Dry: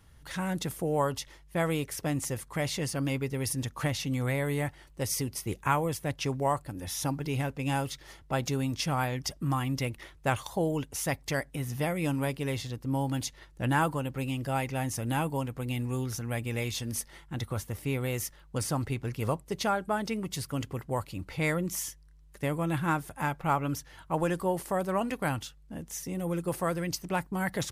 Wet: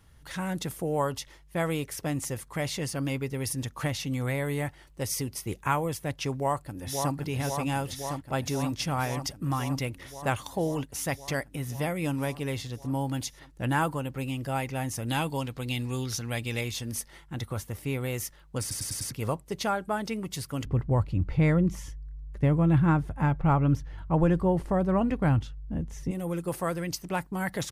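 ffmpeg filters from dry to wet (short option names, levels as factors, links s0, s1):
-filter_complex "[0:a]asplit=2[s0][s1];[s1]afade=t=in:st=6.33:d=0.01,afade=t=out:st=7.14:d=0.01,aecho=0:1:530|1060|1590|2120|2650|3180|3710|4240|4770|5300|5830|6360:0.595662|0.47653|0.381224|0.304979|0.243983|0.195187|0.156149|0.124919|0.0999355|0.0799484|0.0639587|0.051167[s2];[s0][s2]amix=inputs=2:normalize=0,asettb=1/sr,asplit=3[s3][s4][s5];[s3]atrim=end=15.084[s6];[s4]atrim=start=15.08:end=16.61,asetpts=PTS-STARTPTS,afade=t=in:d=0.004:c=qsin,afade=t=out:st=1.526:d=0.004:c=qsin,equalizer=f=4100:t=o:w=1.2:g=11.5[s7];[s5]atrim=start=16.606[s8];[s6][s7]acrossfade=d=0.004:c1=hsin:c2=qsin[s9];[s9][s8]acrossfade=d=0.004:c1=qsin:c2=hsin,asettb=1/sr,asplit=3[s10][s11][s12];[s10]atrim=end=20.654[s13];[s11]atrim=start=20.65:end=26.11,asetpts=PTS-STARTPTS,afade=t=in:d=0.004:c=qsin,afade=t=out:st=5.456:d=0.004:c=qsin,aemphasis=mode=reproduction:type=riaa[s14];[s12]atrim=start=26.106[s15];[s13][s14]acrossfade=d=0.004:c1=hsin:c2=qsin[s16];[s16][s15]acrossfade=d=0.004:c1=qsin:c2=hsin,asplit=6[s17][s18][s19][s20][s21][s22];[s17]atrim=end=18.712[s23];[s18]atrim=start=18.608:end=18.712[s24];[s19]atrim=start=18.608:end=18.712[s25];[s20]atrim=start=18.608:end=18.712[s26];[s21]atrim=start=18.608:end=18.712[s27];[s22]atrim=start=19.108[s28];[s23][s24]acrossfade=d=0.004:c1=hsin:c2=hsin[s29];[s29][s25]acrossfade=d=0.004:c1=hsin:c2=hsin[s30];[s30][s26]acrossfade=d=0.004:c1=hsin:c2=hsin[s31];[s31][s27]acrossfade=d=0.004:c1=hsin:c2=hsin[s32];[s32][s28]acrossfade=d=0.004:c1=hsin:c2=hsin"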